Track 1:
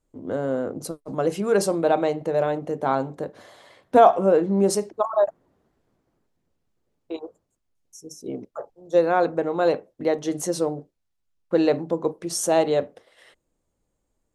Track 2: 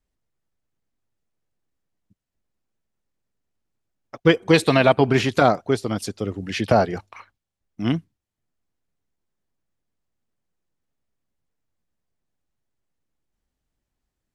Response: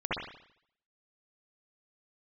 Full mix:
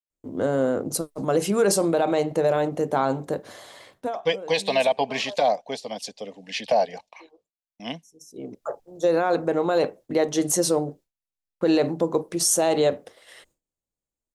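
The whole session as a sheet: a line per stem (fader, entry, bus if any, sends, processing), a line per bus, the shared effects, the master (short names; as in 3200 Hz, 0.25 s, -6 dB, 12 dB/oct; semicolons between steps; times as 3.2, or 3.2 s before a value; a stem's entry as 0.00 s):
+3.0 dB, 0.10 s, no send, high shelf 4100 Hz +8.5 dB; auto duck -23 dB, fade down 0.20 s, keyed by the second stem
+2.0 dB, 0.00 s, no send, three-band isolator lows -18 dB, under 430 Hz, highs -13 dB, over 7100 Hz; fixed phaser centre 360 Hz, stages 6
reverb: off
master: gate with hold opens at -47 dBFS; limiter -11.5 dBFS, peak gain reduction 8 dB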